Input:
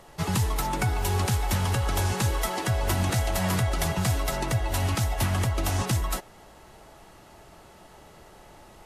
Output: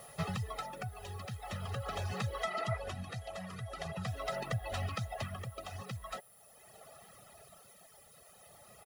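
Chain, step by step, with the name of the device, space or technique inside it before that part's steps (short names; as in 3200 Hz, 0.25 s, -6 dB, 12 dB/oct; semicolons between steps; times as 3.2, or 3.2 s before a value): medium wave at night (BPF 110–4000 Hz; compressor, threshold -29 dBFS, peak gain reduction 6.5 dB; tremolo 0.43 Hz, depth 52%; whine 10000 Hz -55 dBFS; white noise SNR 21 dB); 2.51–2.76 spectral repair 430–2500 Hz before; reverb removal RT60 1.8 s; 2.43–4.07 LPF 11000 Hz 12 dB/oct; comb 1.6 ms, depth 76%; gain -4 dB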